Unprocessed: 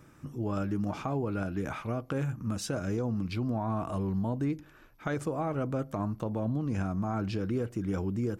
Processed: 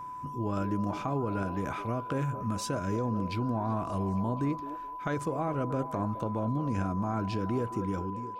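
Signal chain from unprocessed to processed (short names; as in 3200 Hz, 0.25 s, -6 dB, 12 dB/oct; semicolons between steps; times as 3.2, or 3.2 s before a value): ending faded out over 0.57 s; whine 1000 Hz -38 dBFS; delay with a stepping band-pass 0.212 s, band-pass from 410 Hz, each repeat 0.7 oct, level -9 dB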